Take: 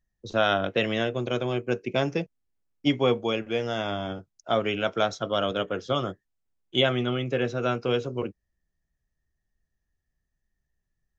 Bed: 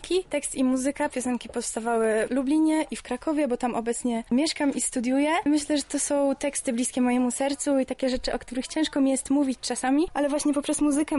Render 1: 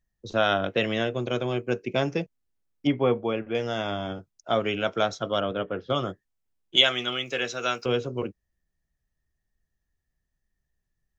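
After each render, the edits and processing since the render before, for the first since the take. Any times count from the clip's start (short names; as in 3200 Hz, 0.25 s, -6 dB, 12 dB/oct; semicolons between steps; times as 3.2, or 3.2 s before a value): 2.87–3.55 LPF 2100 Hz; 5.4–5.9 air absorption 350 m; 6.76–7.86 tilt +4.5 dB/oct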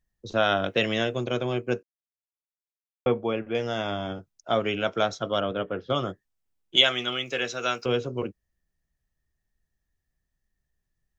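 0.57–1.24 high shelf 4600 Hz +8.5 dB; 1.83–3.06 mute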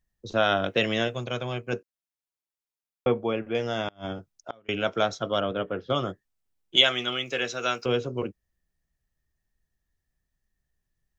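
1.08–1.73 bell 330 Hz -9 dB 1.1 oct; 3.85–4.69 flipped gate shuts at -20 dBFS, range -31 dB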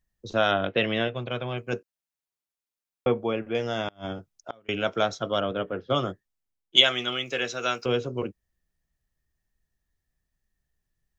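0.51–1.58 LPF 3800 Hz 24 dB/oct; 5.71–6.8 three-band expander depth 40%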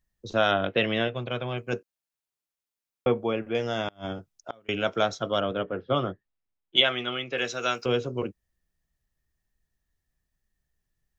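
5.63–7.38 Bessel low-pass 3000 Hz, order 4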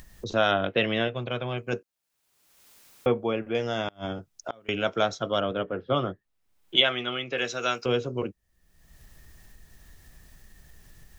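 upward compressor, threshold -28 dBFS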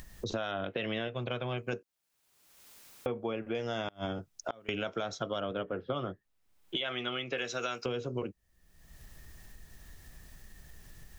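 limiter -16 dBFS, peak gain reduction 11.5 dB; compressor 6:1, threshold -31 dBFS, peak gain reduction 9.5 dB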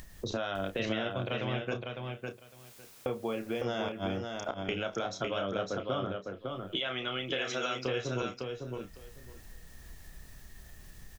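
doubler 31 ms -9 dB; on a send: feedback echo 0.555 s, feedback 16%, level -4.5 dB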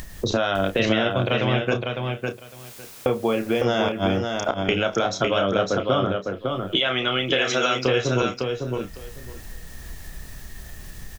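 gain +12 dB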